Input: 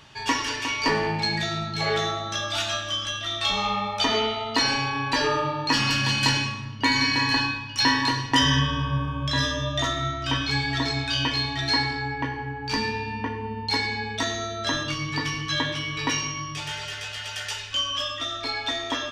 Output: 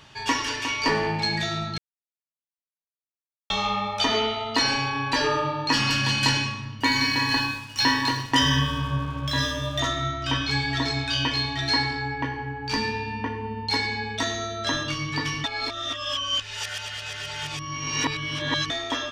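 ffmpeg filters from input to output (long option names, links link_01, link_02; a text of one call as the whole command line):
ffmpeg -i in.wav -filter_complex "[0:a]asettb=1/sr,asplit=3[link_01][link_02][link_03];[link_01]atrim=end=6.804[link_04];[link_02]atrim=start=6.8:end=9.8,asetpts=PTS-STARTPTS,afade=type=in:duration=0.004:curve=qsin,afade=type=out:start_time=2.996:duration=0.004:curve=qsin,aeval=exprs='sgn(val(0))*max(abs(val(0))-0.0075,0)':channel_layout=same[link_05];[link_03]atrim=start=9.796[link_06];[link_04][link_05]acrossfade=duration=0.004:curve1=hsin:curve2=qsin[link_07];[link_07][link_06]acrossfade=duration=0.004:curve1=qsin:curve2=hsin,asplit=5[link_08][link_09][link_10][link_11][link_12];[link_08]atrim=end=1.78,asetpts=PTS-STARTPTS,afade=type=out:start_time=1.776:duration=0.004:curve=hsin[link_13];[link_09]atrim=start=1.78:end=3.5,asetpts=PTS-STARTPTS,volume=0[link_14];[link_10]atrim=start=3.5:end=15.442,asetpts=PTS-STARTPTS,afade=type=in:duration=0.004:curve=hsin[link_15];[link_11]atrim=start=15.438:end=18.702,asetpts=PTS-STARTPTS,areverse[link_16];[link_12]atrim=start=18.698[link_17];[link_13][link_14][link_15]concat=n=3:v=0:a=1[link_18];[link_18][link_16]acrossfade=duration=0.004:curve1=hsin:curve2=hsin[link_19];[link_19][link_17]acrossfade=duration=0.004:curve1=hsin:curve2=hsin" out.wav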